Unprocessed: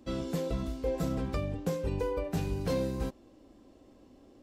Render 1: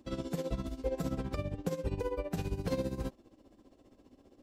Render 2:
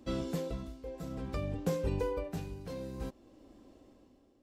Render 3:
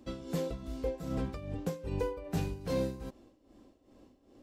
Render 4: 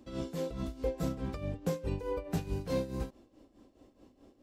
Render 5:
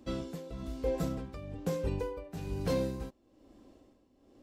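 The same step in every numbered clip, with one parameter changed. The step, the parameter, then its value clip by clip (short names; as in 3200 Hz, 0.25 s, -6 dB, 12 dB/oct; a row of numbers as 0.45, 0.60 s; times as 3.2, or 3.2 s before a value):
tremolo, rate: 15, 0.56, 2.5, 4.7, 1.1 Hz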